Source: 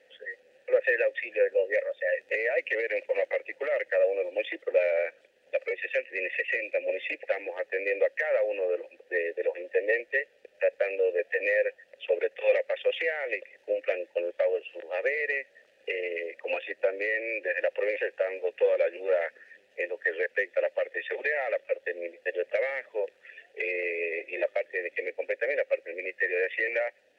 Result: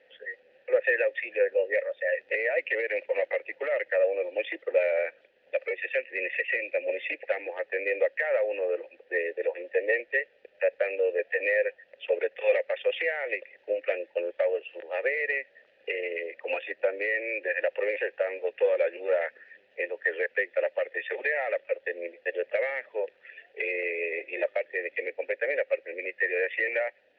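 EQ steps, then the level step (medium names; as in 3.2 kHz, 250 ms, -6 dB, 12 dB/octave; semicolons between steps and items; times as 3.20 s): distance through air 340 m; peaking EQ 910 Hz +2 dB; treble shelf 2.2 kHz +9 dB; 0.0 dB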